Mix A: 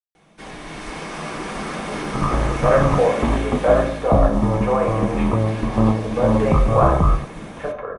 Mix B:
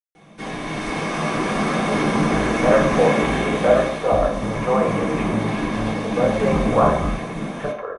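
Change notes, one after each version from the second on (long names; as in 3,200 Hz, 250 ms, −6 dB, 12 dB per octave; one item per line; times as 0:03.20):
first sound: send +9.0 dB
second sound −10.0 dB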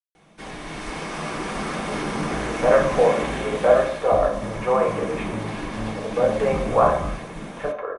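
first sound: send −9.0 dB
second sound −4.5 dB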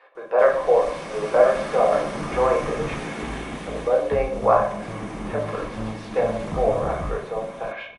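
speech: entry −2.30 s
first sound −4.5 dB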